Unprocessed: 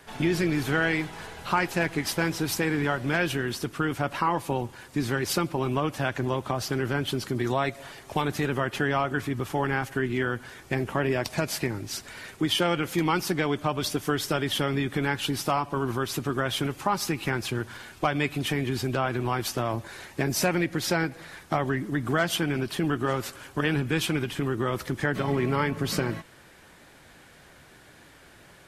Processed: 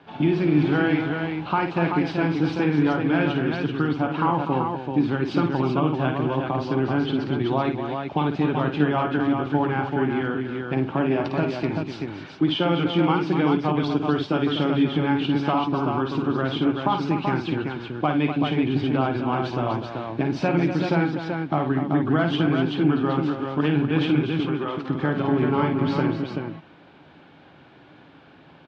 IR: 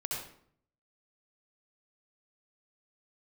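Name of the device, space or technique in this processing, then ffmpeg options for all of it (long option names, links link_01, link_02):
guitar cabinet: -filter_complex "[0:a]asettb=1/sr,asplit=3[link_01][link_02][link_03];[link_01]atrim=end=24.404[link_04];[link_02]atrim=start=24.4:end=24.88,asetpts=PTS-STARTPTS,afade=type=in:duration=0.004:curve=qsin,afade=type=out:start_time=0.476:duration=0.004:curve=qsin,highpass=frequency=560:poles=1[link_05];[link_03]atrim=start=24.876[link_06];[link_04][link_05]acrossfade=duration=0.004:curve1=hsin:curve2=qsin[link_07];[link_07][link_06]acrossfade=duration=0.004:curve1=qsin:curve2=hsin,highpass=95,equalizer=frequency=160:width_type=q:width=4:gain=6,equalizer=frequency=290:width_type=q:width=4:gain=8,equalizer=frequency=820:width_type=q:width=4:gain=4,equalizer=frequency=1900:width_type=q:width=4:gain=-9,lowpass=frequency=3500:width=0.5412,lowpass=frequency=3500:width=1.3066,aecho=1:1:53|246|383:0.473|0.355|0.562"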